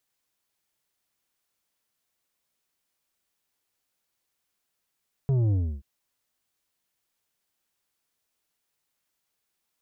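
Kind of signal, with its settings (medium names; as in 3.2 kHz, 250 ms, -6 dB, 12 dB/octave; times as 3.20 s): sub drop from 140 Hz, over 0.53 s, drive 8 dB, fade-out 0.30 s, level -21 dB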